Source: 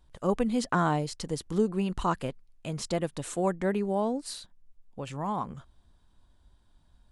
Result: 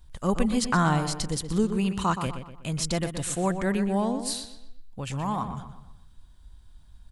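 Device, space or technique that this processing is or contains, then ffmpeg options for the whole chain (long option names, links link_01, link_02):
smiley-face EQ: -filter_complex "[0:a]lowshelf=frequency=88:gain=6.5,equalizer=frequency=470:width_type=o:width=2:gain=-7.5,highshelf=frequency=7100:gain=5.5,asettb=1/sr,asplit=3[link_01][link_02][link_03];[link_01]atrim=end=1.764[link_04];[link_02]atrim=start=1.76:end=2.27,asetpts=PTS-STARTPTS,afade=type=in:duration=0.004:curve=qsin,afade=type=out:start_time=0.506:duration=0.004:curve=qsin,highpass=100[link_05];[link_03]atrim=start=2.266[link_06];[link_04][link_05]acrossfade=duration=0.004:curve1=hsin:curve2=qsin[link_07];[link_07][link_06]acrossfade=duration=0.004:curve1=qsin:curve2=hsin,asplit=2[link_08][link_09];[link_09]adelay=123,lowpass=frequency=3700:poles=1,volume=-8.5dB,asplit=2[link_10][link_11];[link_11]adelay=123,lowpass=frequency=3700:poles=1,volume=0.42,asplit=2[link_12][link_13];[link_13]adelay=123,lowpass=frequency=3700:poles=1,volume=0.42,asplit=2[link_14][link_15];[link_15]adelay=123,lowpass=frequency=3700:poles=1,volume=0.42,asplit=2[link_16][link_17];[link_17]adelay=123,lowpass=frequency=3700:poles=1,volume=0.42[link_18];[link_08][link_10][link_12][link_14][link_16][link_18]amix=inputs=6:normalize=0,volume=5.5dB"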